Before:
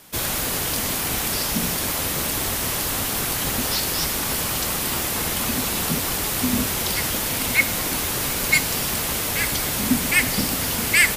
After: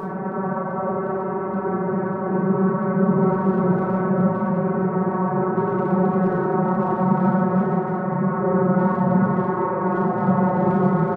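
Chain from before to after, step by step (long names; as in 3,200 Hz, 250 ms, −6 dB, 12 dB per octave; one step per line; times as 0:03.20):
vocoder with a gliding carrier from G#3, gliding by −9 semitones
Butterworth low-pass 1,400 Hz 36 dB per octave
parametric band 200 Hz −5 dB 1.1 octaves
automatic gain control gain up to 16.5 dB
extreme stretch with random phases 12×, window 0.05 s, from 0:01.93
far-end echo of a speakerphone 320 ms, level −9 dB
convolution reverb RT60 1.0 s, pre-delay 5 ms, DRR −1.5 dB
level −8.5 dB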